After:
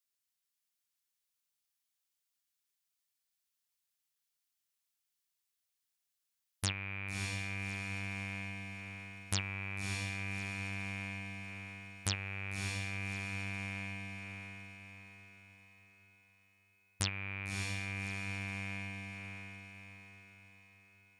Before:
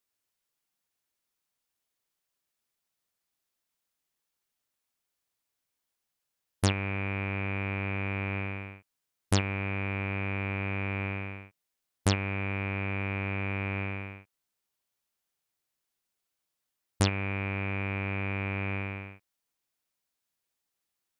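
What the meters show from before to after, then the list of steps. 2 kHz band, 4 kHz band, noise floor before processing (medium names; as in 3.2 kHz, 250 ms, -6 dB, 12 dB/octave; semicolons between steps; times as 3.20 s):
-5.0 dB, -2.0 dB, -85 dBFS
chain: amplifier tone stack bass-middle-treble 5-5-5; echo that smears into a reverb 608 ms, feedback 47%, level -4.5 dB; trim +3.5 dB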